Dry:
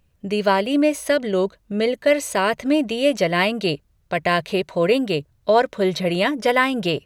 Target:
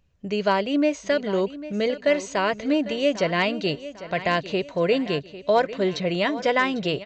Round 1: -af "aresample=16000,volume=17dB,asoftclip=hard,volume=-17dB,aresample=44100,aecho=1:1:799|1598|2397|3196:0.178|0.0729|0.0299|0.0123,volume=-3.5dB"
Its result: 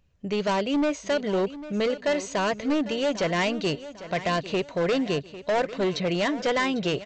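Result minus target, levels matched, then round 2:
overloaded stage: distortion +26 dB
-af "aresample=16000,volume=7dB,asoftclip=hard,volume=-7dB,aresample=44100,aecho=1:1:799|1598|2397|3196:0.178|0.0729|0.0299|0.0123,volume=-3.5dB"

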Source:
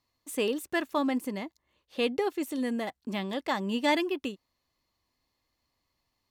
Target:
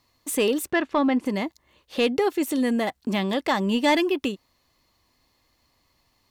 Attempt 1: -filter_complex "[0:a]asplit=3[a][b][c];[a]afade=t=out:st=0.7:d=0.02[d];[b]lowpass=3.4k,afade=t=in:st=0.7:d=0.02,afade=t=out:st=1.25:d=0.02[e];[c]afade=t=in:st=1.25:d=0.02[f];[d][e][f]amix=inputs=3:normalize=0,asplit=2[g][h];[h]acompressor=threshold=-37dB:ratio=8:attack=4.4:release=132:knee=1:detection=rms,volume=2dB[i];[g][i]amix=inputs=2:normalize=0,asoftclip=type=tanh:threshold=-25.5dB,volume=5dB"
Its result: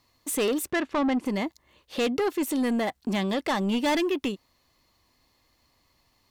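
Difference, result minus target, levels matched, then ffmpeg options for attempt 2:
soft clip: distortion +12 dB
-filter_complex "[0:a]asplit=3[a][b][c];[a]afade=t=out:st=0.7:d=0.02[d];[b]lowpass=3.4k,afade=t=in:st=0.7:d=0.02,afade=t=out:st=1.25:d=0.02[e];[c]afade=t=in:st=1.25:d=0.02[f];[d][e][f]amix=inputs=3:normalize=0,asplit=2[g][h];[h]acompressor=threshold=-37dB:ratio=8:attack=4.4:release=132:knee=1:detection=rms,volume=2dB[i];[g][i]amix=inputs=2:normalize=0,asoftclip=type=tanh:threshold=-15.5dB,volume=5dB"

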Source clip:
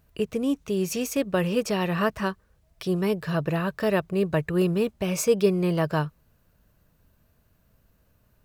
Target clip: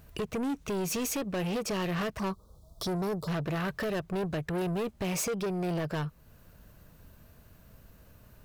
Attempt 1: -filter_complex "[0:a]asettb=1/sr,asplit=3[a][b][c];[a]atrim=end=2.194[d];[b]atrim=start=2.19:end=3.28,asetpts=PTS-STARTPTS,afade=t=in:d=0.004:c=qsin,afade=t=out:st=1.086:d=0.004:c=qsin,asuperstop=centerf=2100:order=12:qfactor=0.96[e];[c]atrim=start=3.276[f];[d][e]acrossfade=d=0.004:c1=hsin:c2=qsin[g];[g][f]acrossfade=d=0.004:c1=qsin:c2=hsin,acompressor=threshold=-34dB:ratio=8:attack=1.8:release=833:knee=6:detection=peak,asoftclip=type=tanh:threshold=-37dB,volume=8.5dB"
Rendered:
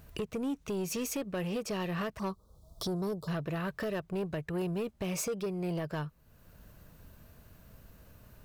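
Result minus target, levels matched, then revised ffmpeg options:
compressor: peak gain reduction +7 dB
-filter_complex "[0:a]asettb=1/sr,asplit=3[a][b][c];[a]atrim=end=2.194[d];[b]atrim=start=2.19:end=3.28,asetpts=PTS-STARTPTS,afade=t=in:d=0.004:c=qsin,afade=t=out:st=1.086:d=0.004:c=qsin,asuperstop=centerf=2100:order=12:qfactor=0.96[e];[c]atrim=start=3.276[f];[d][e]acrossfade=d=0.004:c1=hsin:c2=qsin[g];[g][f]acrossfade=d=0.004:c1=qsin:c2=hsin,acompressor=threshold=-26dB:ratio=8:attack=1.8:release=833:knee=6:detection=peak,asoftclip=type=tanh:threshold=-37dB,volume=8.5dB"

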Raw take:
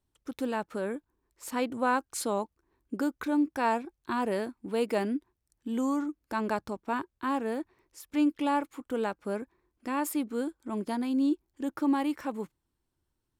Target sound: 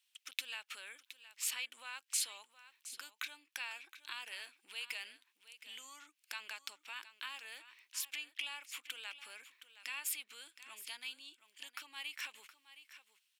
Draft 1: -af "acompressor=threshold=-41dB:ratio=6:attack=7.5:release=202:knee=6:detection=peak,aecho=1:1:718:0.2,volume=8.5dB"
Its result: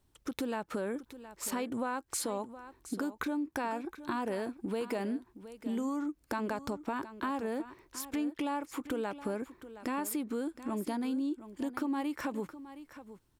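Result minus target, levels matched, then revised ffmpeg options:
2000 Hz band -6.5 dB
-af "acompressor=threshold=-41dB:ratio=6:attack=7.5:release=202:knee=6:detection=peak,highpass=f=2.7k:t=q:w=2.9,aecho=1:1:718:0.2,volume=8.5dB"

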